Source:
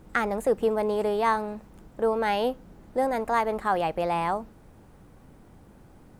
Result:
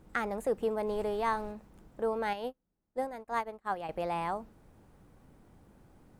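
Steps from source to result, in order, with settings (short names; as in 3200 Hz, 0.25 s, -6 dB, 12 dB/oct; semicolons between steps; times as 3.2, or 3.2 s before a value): 0.86–1.51 added noise brown -40 dBFS; 2.33–3.89 upward expander 2.5:1, over -40 dBFS; gain -7 dB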